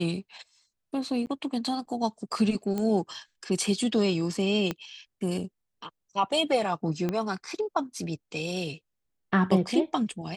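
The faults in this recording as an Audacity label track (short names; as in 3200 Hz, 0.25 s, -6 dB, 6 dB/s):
1.260000	1.270000	gap 9.3 ms
2.780000	2.780000	pop -18 dBFS
4.710000	4.710000	pop -15 dBFS
7.090000	7.090000	pop -16 dBFS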